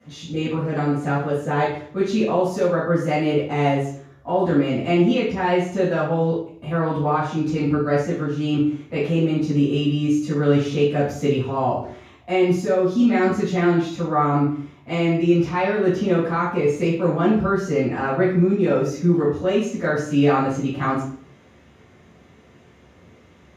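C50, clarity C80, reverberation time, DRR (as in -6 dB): 3.0 dB, 7.5 dB, 0.55 s, -13.5 dB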